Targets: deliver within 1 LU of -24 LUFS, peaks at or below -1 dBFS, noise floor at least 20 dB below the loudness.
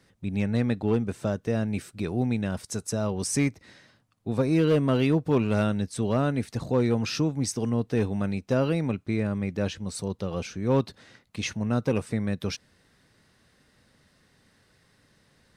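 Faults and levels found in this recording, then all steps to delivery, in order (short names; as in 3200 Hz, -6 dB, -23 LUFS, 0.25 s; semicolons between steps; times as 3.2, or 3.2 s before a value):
clipped 0.4%; flat tops at -15.5 dBFS; loudness -27.0 LUFS; peak -15.5 dBFS; loudness target -24.0 LUFS
-> clip repair -15.5 dBFS; gain +3 dB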